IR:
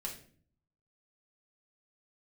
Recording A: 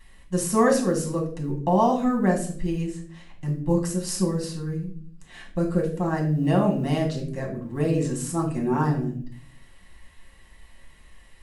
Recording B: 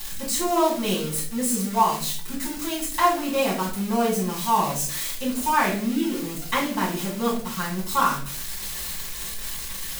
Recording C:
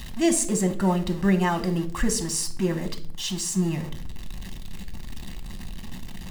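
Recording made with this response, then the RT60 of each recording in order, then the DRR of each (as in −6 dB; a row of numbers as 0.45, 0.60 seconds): A; 0.50, 0.50, 0.50 seconds; −1.5, −8.5, 7.0 decibels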